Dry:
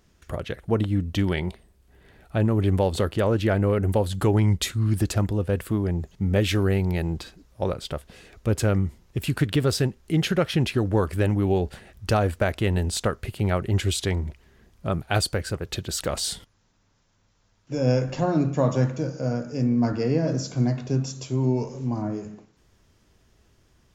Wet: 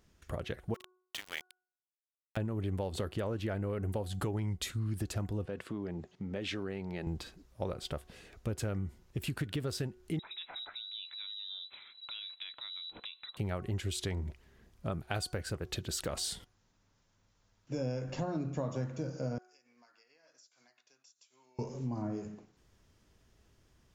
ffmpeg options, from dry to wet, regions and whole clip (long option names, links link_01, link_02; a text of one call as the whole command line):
ffmpeg -i in.wav -filter_complex "[0:a]asettb=1/sr,asplit=3[link_01][link_02][link_03];[link_01]atrim=end=0.744[link_04];[link_02]atrim=start=0.74:end=2.37,asetpts=PTS-STARTPTS,afade=type=in:duration=0.004:curve=qsin,afade=type=out:start_time=1.626:duration=0.004:curve=qsin,highpass=1100,aeval=exprs='val(0)*gte(abs(val(0)),0.0211)':channel_layout=same[link_05];[link_03]atrim=start=2.366[link_06];[link_04][link_05]acrossfade=duration=0.004:curve1=hsin:curve2=qsin[link_07];[link_07][link_06]acrossfade=duration=0.004:curve1=qsin:curve2=hsin,asettb=1/sr,asplit=3[link_08][link_09][link_10];[link_08]atrim=end=5.454[link_11];[link_09]atrim=start=5.45:end=7.07,asetpts=PTS-STARTPTS,afade=type=in:duration=0.004:curve=qsin,afade=type=out:start_time=1.616:duration=0.004:curve=qsin,acompressor=threshold=-24dB:ratio=6:attack=3.2:release=140:knee=1:detection=peak,highpass=180,lowpass=5300[link_12];[link_10]atrim=start=7.066[link_13];[link_11][link_12]acrossfade=duration=0.004:curve1=hsin:curve2=qsin[link_14];[link_14][link_13]acrossfade=duration=0.004:curve1=qsin:curve2=hsin,asettb=1/sr,asplit=3[link_15][link_16][link_17];[link_15]atrim=end=10.194[link_18];[link_16]atrim=start=10.19:end=13.37,asetpts=PTS-STARTPTS,afade=type=in:duration=0.004:curve=qsin,afade=type=out:start_time=3.176:duration=0.004:curve=qsin,lowpass=frequency=3400:width_type=q:width=0.5098,lowpass=frequency=3400:width_type=q:width=0.6013,lowpass=frequency=3400:width_type=q:width=0.9,lowpass=frequency=3400:width_type=q:width=2.563,afreqshift=-4000,acompressor=threshold=-40dB:ratio=3:attack=3.2:release=140:knee=1:detection=peak[link_19];[link_17]atrim=start=13.366[link_20];[link_18][link_19]acrossfade=duration=0.004:curve1=hsin:curve2=qsin[link_21];[link_21][link_20]acrossfade=duration=0.004:curve1=qsin:curve2=hsin,asettb=1/sr,asplit=3[link_22][link_23][link_24];[link_22]atrim=end=19.384[link_25];[link_23]atrim=start=19.38:end=21.59,asetpts=PTS-STARTPTS,afade=type=in:duration=0.004:curve=qsin,afade=type=out:start_time=2.206:duration=0.004:curve=qsin,highpass=1500,acompressor=threshold=-48dB:ratio=10:attack=3.2:release=140:knee=1:detection=peak,agate=range=-33dB:threshold=-47dB:ratio=3:release=100:detection=peak[link_26];[link_24]atrim=start=21.586[link_27];[link_25][link_26]acrossfade=duration=0.004:curve1=hsin:curve2=qsin[link_28];[link_28][link_27]acrossfade=duration=0.004:curve1=qsin:curve2=hsin,bandreject=frequency=367:width_type=h:width=4,bandreject=frequency=734:width_type=h:width=4,bandreject=frequency=1101:width_type=h:width=4,bandreject=frequency=1468:width_type=h:width=4,acompressor=threshold=-26dB:ratio=6,volume=-6dB" out.wav